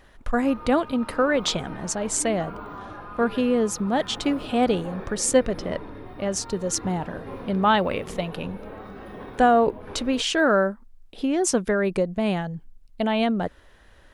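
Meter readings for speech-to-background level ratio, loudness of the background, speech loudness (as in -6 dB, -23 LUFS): 15.5 dB, -39.5 LUFS, -24.0 LUFS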